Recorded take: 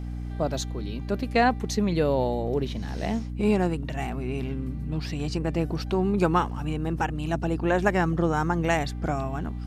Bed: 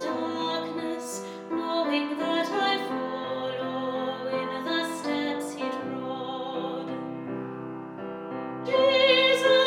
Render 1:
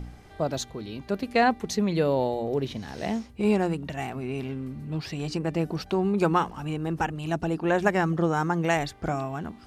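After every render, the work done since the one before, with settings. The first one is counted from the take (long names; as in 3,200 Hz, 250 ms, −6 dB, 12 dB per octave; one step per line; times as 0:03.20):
hum removal 60 Hz, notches 5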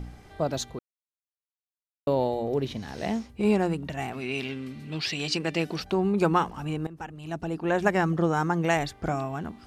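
0:00.79–0:02.07: silence
0:04.13–0:05.80: meter weighting curve D
0:06.87–0:07.94: fade in, from −16.5 dB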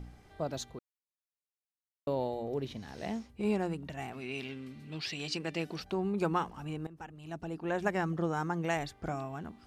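level −8 dB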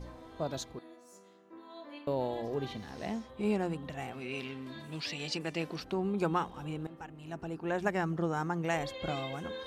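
mix in bed −22 dB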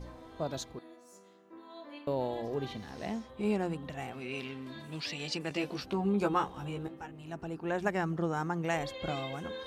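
0:05.49–0:07.22: double-tracking delay 15 ms −3.5 dB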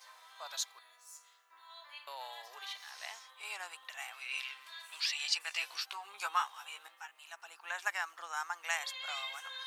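high-pass filter 950 Hz 24 dB per octave
spectral tilt +2.5 dB per octave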